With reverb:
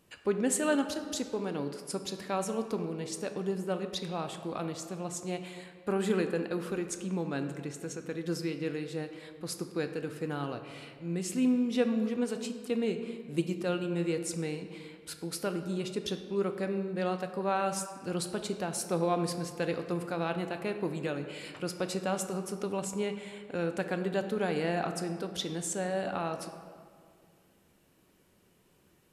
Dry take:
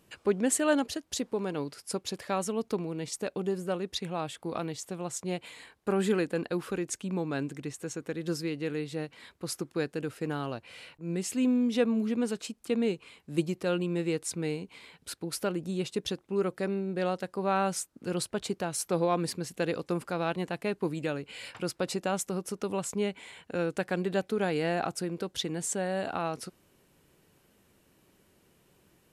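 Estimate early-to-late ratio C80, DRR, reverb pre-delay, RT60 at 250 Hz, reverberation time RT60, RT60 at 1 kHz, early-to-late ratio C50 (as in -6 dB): 10.0 dB, 6.5 dB, 4 ms, 2.5 s, 2.1 s, 2.0 s, 8.5 dB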